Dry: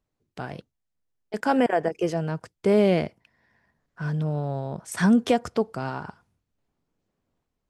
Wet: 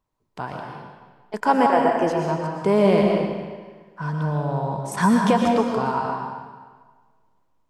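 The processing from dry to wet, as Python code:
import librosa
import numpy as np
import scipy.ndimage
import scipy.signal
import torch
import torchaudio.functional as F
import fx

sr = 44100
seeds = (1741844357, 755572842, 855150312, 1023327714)

y = fx.peak_eq(x, sr, hz=980.0, db=14.0, octaves=0.38)
y = fx.rev_freeverb(y, sr, rt60_s=1.5, hf_ratio=0.9, predelay_ms=80, drr_db=0.5)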